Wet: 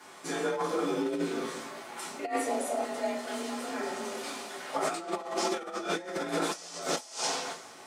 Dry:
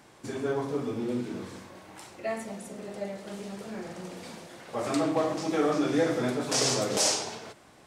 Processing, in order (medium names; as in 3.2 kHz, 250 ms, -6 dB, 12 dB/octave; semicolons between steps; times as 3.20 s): bass shelf 320 Hz -11 dB; reverberation, pre-delay 3 ms, DRR -7 dB; compressor with a negative ratio -28 dBFS, ratio -0.5; 2.02–2.85 s: peaking EQ 160 Hz -> 760 Hz +13 dB 0.77 oct; frequency shift +43 Hz; trim -3.5 dB